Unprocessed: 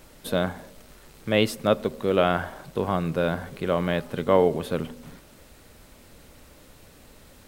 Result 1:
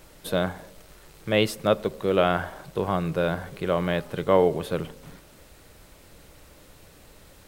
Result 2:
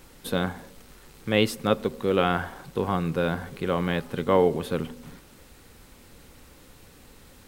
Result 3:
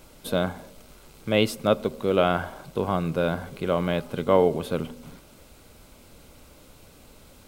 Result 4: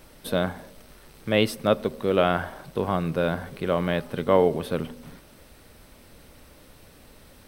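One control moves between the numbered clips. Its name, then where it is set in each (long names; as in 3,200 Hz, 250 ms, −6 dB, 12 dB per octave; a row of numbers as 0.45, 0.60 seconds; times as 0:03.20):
notch filter, centre frequency: 240, 620, 1,800, 7,000 Hertz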